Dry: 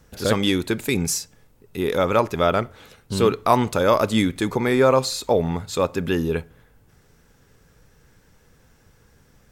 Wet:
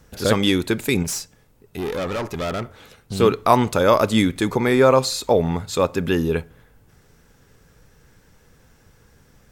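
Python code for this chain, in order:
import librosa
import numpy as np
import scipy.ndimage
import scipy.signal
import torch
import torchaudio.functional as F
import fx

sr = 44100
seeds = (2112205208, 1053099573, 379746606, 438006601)

y = fx.tube_stage(x, sr, drive_db=24.0, bias=0.4, at=(1.03, 3.2))
y = F.gain(torch.from_numpy(y), 2.0).numpy()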